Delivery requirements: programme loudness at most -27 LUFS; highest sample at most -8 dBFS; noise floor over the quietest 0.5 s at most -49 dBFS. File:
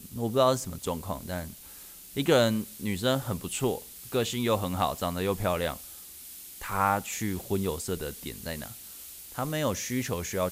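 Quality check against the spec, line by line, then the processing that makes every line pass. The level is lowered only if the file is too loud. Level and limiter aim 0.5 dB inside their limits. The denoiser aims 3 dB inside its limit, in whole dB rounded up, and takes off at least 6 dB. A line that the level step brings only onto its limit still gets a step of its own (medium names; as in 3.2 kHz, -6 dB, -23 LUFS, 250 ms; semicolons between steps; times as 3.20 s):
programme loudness -29.5 LUFS: pass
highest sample -10.0 dBFS: pass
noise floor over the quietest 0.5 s -47 dBFS: fail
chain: noise reduction 6 dB, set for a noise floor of -47 dBFS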